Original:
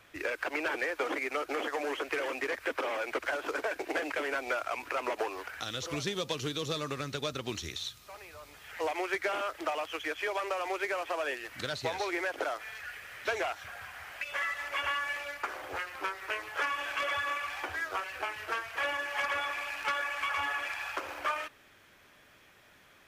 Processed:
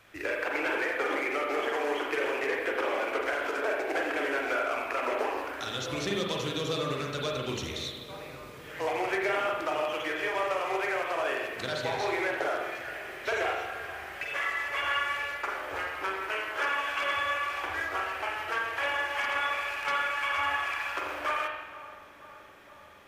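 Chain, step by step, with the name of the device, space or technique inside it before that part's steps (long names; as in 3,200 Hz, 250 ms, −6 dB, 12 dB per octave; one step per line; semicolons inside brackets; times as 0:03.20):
dub delay into a spring reverb (feedback echo with a low-pass in the loop 476 ms, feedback 84%, low-pass 1,400 Hz, level −16 dB; spring reverb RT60 1.2 s, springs 39/44 ms, chirp 40 ms, DRR −1 dB)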